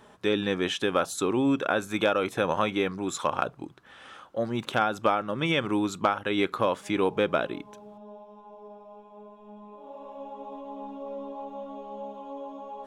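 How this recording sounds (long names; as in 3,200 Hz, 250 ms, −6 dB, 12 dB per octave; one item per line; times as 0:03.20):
background noise floor −52 dBFS
spectral slope −3.5 dB per octave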